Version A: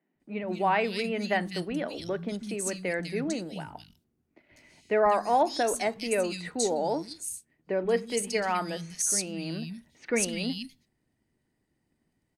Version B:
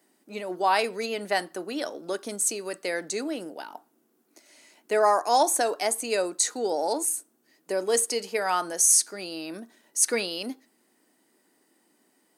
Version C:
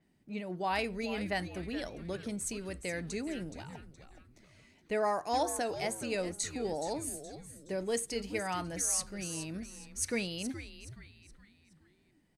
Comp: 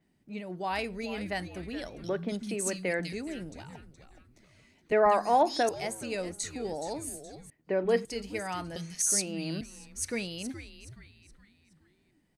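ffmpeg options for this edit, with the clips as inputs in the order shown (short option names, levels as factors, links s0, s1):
-filter_complex "[0:a]asplit=4[s0][s1][s2][s3];[2:a]asplit=5[s4][s5][s6][s7][s8];[s4]atrim=end=2.042[s9];[s0]atrim=start=2.038:end=3.132[s10];[s5]atrim=start=3.128:end=4.922[s11];[s1]atrim=start=4.918:end=5.692[s12];[s6]atrim=start=5.688:end=7.502[s13];[s2]atrim=start=7.498:end=8.052[s14];[s7]atrim=start=8.048:end=8.762[s15];[s3]atrim=start=8.758:end=9.612[s16];[s8]atrim=start=9.608[s17];[s9][s10]acrossfade=d=0.004:c1=hsin:c2=hsin[s18];[s18][s11]acrossfade=d=0.004:c1=hsin:c2=hsin[s19];[s19][s12]acrossfade=d=0.004:c1=hsin:c2=hsin[s20];[s20][s13]acrossfade=d=0.004:c1=hsin:c2=hsin[s21];[s21][s14]acrossfade=d=0.004:c1=hsin:c2=hsin[s22];[s22][s15]acrossfade=d=0.004:c1=hsin:c2=hsin[s23];[s23][s16]acrossfade=d=0.004:c1=hsin:c2=hsin[s24];[s24][s17]acrossfade=d=0.004:c1=hsin:c2=hsin"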